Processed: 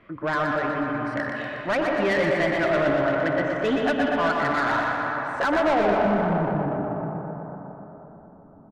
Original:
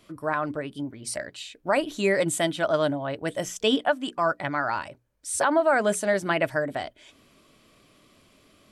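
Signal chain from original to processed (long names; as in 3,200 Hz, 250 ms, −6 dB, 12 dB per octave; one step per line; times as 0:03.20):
low-pass filter sweep 1,900 Hz → 200 Hz, 0:05.52–0:06.06
convolution reverb RT60 4.0 s, pre-delay 109 ms, DRR 4.5 dB
soft clipping −23 dBFS, distortion −7 dB
high-shelf EQ 3,600 Hz −10.5 dB
repeating echo 121 ms, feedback 57%, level −5 dB
level +4 dB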